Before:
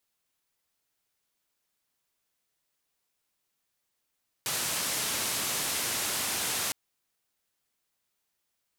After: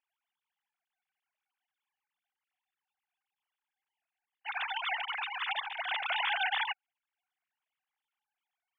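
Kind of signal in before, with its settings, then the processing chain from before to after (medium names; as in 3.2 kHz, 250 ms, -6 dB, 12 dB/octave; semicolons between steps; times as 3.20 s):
noise band 82–12000 Hz, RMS -31 dBFS 2.26 s
formants replaced by sine waves; gate -30 dBFS, range -10 dB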